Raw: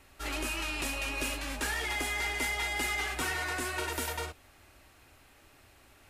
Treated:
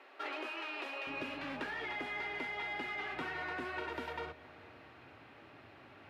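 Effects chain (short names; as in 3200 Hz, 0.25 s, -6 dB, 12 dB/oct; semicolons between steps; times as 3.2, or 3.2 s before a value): HPF 360 Hz 24 dB/oct, from 1.07 s 110 Hz; compressor 5:1, threshold -42 dBFS, peak gain reduction 12 dB; air absorption 340 m; Schroeder reverb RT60 3.2 s, combs from 30 ms, DRR 16.5 dB; gain +6.5 dB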